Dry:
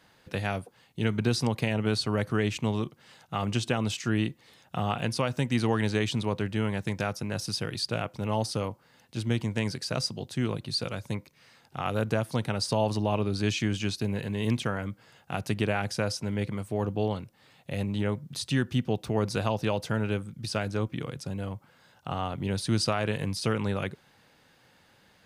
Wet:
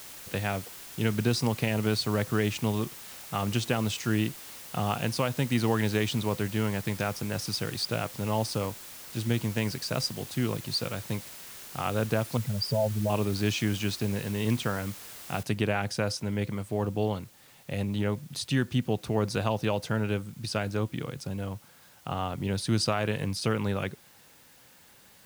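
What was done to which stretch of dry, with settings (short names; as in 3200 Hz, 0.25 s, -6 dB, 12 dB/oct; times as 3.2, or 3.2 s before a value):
12.37–13.1 spectral contrast raised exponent 2.8
15.43 noise floor step -45 dB -58 dB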